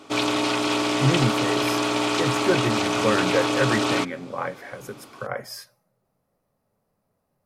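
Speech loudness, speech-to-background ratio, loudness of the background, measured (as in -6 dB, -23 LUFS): -27.5 LUFS, -4.5 dB, -23.0 LUFS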